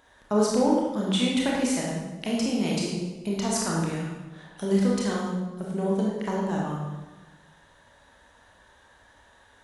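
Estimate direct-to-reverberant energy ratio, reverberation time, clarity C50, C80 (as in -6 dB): -4.0 dB, 1.2 s, -0.5 dB, 2.5 dB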